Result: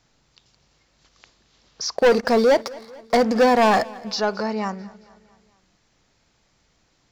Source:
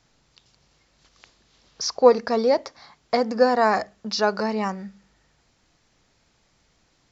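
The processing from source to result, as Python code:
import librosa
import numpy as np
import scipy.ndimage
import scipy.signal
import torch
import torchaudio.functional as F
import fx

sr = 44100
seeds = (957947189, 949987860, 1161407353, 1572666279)

y = fx.leveller(x, sr, passes=2, at=(1.96, 3.97))
y = 10.0 ** (-11.0 / 20.0) * np.tanh(y / 10.0 ** (-11.0 / 20.0))
y = fx.echo_feedback(y, sr, ms=221, feedback_pct=56, wet_db=-22)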